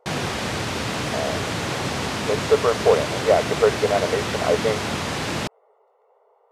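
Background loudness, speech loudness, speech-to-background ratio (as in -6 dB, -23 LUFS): -25.5 LUFS, -22.5 LUFS, 3.0 dB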